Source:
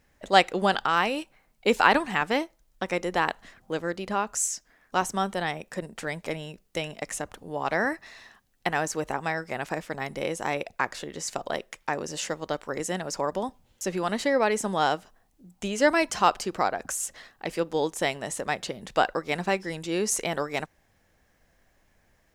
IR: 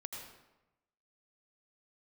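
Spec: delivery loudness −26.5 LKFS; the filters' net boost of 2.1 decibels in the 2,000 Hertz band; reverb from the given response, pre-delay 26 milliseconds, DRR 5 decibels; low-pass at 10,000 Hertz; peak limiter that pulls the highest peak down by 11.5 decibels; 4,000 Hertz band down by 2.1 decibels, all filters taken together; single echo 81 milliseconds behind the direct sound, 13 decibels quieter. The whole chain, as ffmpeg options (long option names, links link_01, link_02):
-filter_complex "[0:a]lowpass=10000,equalizer=frequency=2000:width_type=o:gain=3.5,equalizer=frequency=4000:width_type=o:gain=-4.5,alimiter=limit=-14dB:level=0:latency=1,aecho=1:1:81:0.224,asplit=2[link_01][link_02];[1:a]atrim=start_sample=2205,adelay=26[link_03];[link_02][link_03]afir=irnorm=-1:irlink=0,volume=-3dB[link_04];[link_01][link_04]amix=inputs=2:normalize=0,volume=2dB"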